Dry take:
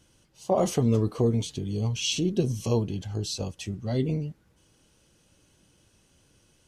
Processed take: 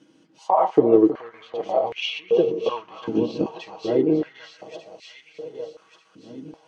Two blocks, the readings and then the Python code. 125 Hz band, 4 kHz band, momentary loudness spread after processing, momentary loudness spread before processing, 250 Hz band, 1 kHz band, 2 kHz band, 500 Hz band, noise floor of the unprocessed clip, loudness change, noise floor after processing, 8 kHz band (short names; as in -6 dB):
-12.0 dB, 0.0 dB, 23 LU, 9 LU, +5.5 dB, +12.0 dB, +6.0 dB, +9.0 dB, -64 dBFS, +5.5 dB, -58 dBFS, under -15 dB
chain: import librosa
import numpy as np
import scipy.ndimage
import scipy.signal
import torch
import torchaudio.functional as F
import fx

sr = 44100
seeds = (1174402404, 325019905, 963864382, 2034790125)

p1 = fx.reverse_delay_fb(x, sr, ms=597, feedback_pct=60, wet_db=-9)
p2 = fx.env_lowpass_down(p1, sr, base_hz=2000.0, full_db=-23.0)
p3 = fx.high_shelf(p2, sr, hz=6200.0, db=-6.5)
p4 = p3 + 0.51 * np.pad(p3, (int(6.3 * sr / 1000.0), 0))[:len(p3)]
p5 = fx.transient(p4, sr, attack_db=0, sustain_db=-5)
p6 = fx.air_absorb(p5, sr, metres=83.0)
p7 = p6 + fx.echo_feedback(p6, sr, ms=318, feedback_pct=37, wet_db=-12.0, dry=0)
p8 = fx.filter_held_highpass(p7, sr, hz=2.6, low_hz=260.0, high_hz=2200.0)
y = F.gain(torch.from_numpy(p8), 4.0).numpy()